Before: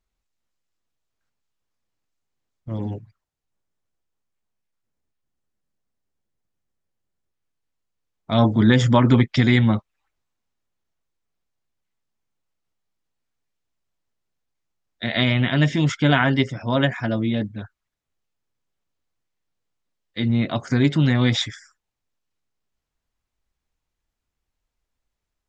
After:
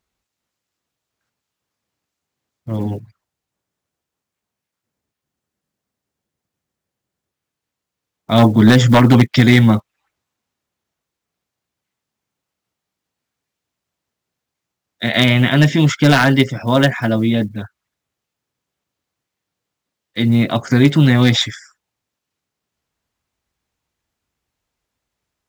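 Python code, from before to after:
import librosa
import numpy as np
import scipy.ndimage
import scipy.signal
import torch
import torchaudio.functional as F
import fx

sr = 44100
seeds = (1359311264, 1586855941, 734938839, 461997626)

y = fx.block_float(x, sr, bits=7)
y = scipy.signal.sosfilt(scipy.signal.butter(2, 83.0, 'highpass', fs=sr, output='sos'), y)
y = 10.0 ** (-8.5 / 20.0) * (np.abs((y / 10.0 ** (-8.5 / 20.0) + 3.0) % 4.0 - 2.0) - 1.0)
y = y * librosa.db_to_amplitude(7.0)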